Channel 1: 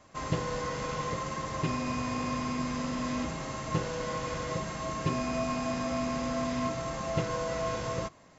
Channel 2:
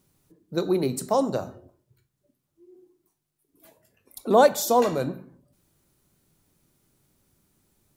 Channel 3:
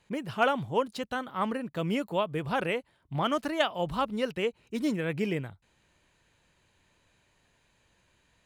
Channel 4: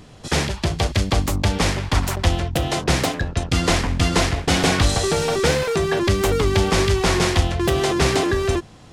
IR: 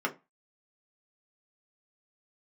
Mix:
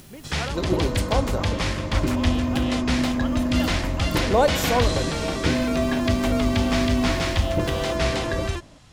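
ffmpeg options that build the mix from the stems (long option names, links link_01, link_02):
-filter_complex "[0:a]tiltshelf=frequency=1100:gain=8.5,aecho=1:1:3.3:0.6,adelay=400,volume=0.5dB[link_01];[1:a]acompressor=mode=upward:threshold=-29dB:ratio=2.5,volume=-2.5dB[link_02];[2:a]volume=-8.5dB[link_03];[3:a]acrossover=split=4900[link_04][link_05];[link_05]acompressor=threshold=-37dB:ratio=4:attack=1:release=60[link_06];[link_04][link_06]amix=inputs=2:normalize=0,equalizer=frequency=390:width=0.52:gain=-10.5,volume=-2.5dB[link_07];[link_01][link_02][link_03][link_07]amix=inputs=4:normalize=0"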